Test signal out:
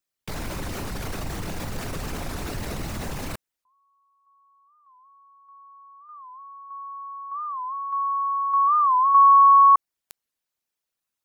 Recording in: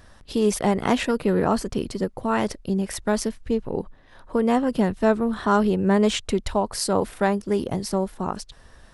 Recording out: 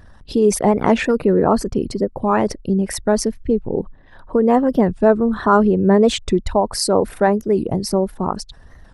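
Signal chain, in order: resonances exaggerated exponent 1.5; dynamic bell 3.2 kHz, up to -5 dB, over -55 dBFS, Q 4.3; warped record 45 rpm, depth 160 cents; trim +6 dB

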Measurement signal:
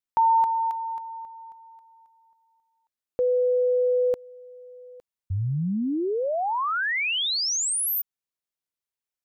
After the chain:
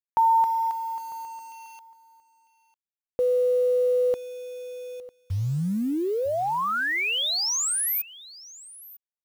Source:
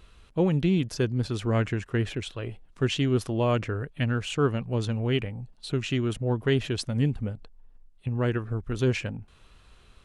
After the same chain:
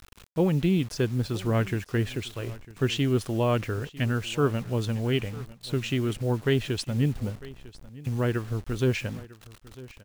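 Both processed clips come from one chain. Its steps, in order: bit crusher 8-bit; on a send: delay 950 ms -19.5 dB

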